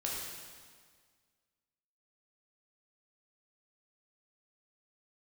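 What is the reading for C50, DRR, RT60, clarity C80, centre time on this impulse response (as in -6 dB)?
-0.5 dB, -4.0 dB, 1.7 s, 1.0 dB, 98 ms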